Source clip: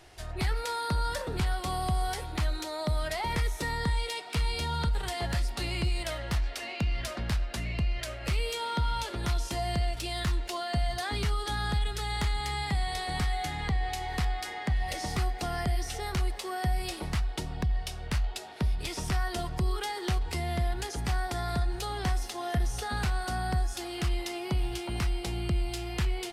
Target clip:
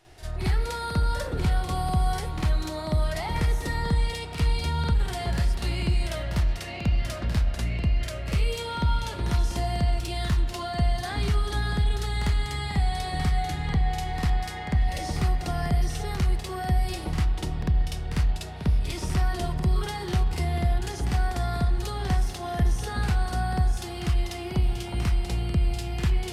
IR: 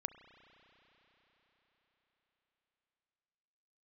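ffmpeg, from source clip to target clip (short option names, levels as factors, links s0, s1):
-filter_complex "[0:a]asplit=2[s0][s1];[1:a]atrim=start_sample=2205,lowshelf=f=380:g=7,adelay=50[s2];[s1][s2]afir=irnorm=-1:irlink=0,volume=2.82[s3];[s0][s3]amix=inputs=2:normalize=0,volume=0.422"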